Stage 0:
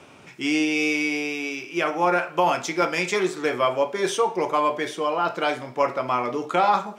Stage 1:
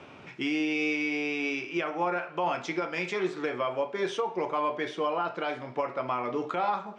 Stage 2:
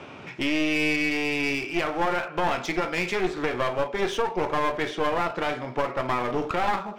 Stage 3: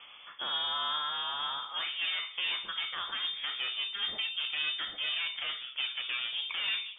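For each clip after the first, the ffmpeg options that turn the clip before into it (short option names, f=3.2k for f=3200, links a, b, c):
-af "lowpass=3.8k,alimiter=limit=-19dB:level=0:latency=1:release=451"
-af "aeval=exprs='clip(val(0),-1,0.0141)':c=same,volume=6.5dB"
-af "flanger=delay=5.9:depth=10:regen=70:speed=0.66:shape=triangular,lowpass=f=3.1k:t=q:w=0.5098,lowpass=f=3.1k:t=q:w=0.6013,lowpass=f=3.1k:t=q:w=0.9,lowpass=f=3.1k:t=q:w=2.563,afreqshift=-3600,volume=-5dB"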